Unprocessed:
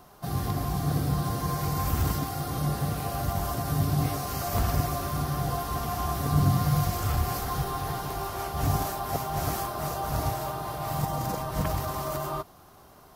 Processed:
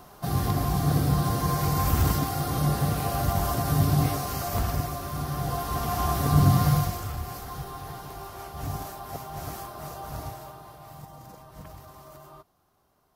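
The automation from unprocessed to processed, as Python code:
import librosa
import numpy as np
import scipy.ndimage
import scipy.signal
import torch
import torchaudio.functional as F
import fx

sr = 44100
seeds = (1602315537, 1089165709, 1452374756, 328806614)

y = fx.gain(x, sr, db=fx.line((3.94, 3.5), (5.0, -3.5), (6.04, 3.5), (6.69, 3.5), (7.12, -7.0), (10.13, -7.0), (11.07, -16.0)))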